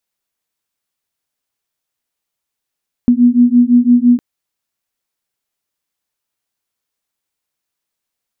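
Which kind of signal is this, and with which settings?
beating tones 240 Hz, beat 5.9 Hz, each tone -9.5 dBFS 1.11 s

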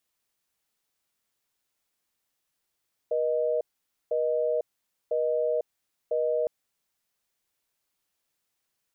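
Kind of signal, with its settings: call progress tone busy tone, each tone -26 dBFS 3.36 s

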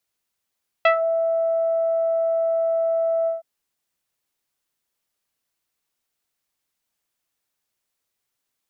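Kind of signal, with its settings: synth note saw E5 24 dB/oct, low-pass 780 Hz, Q 1.4, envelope 2 oct, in 0.18 s, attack 4.5 ms, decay 0.10 s, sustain -9 dB, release 0.15 s, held 2.42 s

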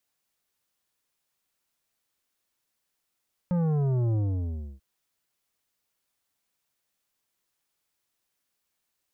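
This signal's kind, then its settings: sub drop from 180 Hz, over 1.29 s, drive 10.5 dB, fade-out 0.66 s, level -23.5 dB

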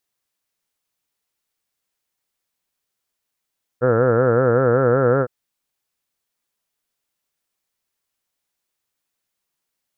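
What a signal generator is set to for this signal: formant-synthesis vowel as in heard, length 1.46 s, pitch 119 Hz, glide +1.5 st, vibrato depth 1.3 st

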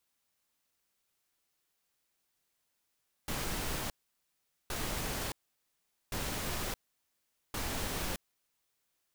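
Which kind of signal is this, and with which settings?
noise bursts pink, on 0.62 s, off 0.80 s, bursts 4, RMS -36 dBFS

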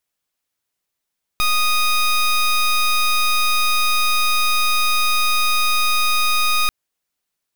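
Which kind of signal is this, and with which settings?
pulse 1240 Hz, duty 16% -16.5 dBFS 5.29 s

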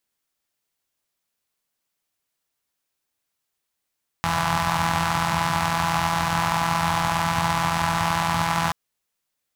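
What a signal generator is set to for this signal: four-cylinder engine model, steady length 4.48 s, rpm 5000, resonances 94/140/900 Hz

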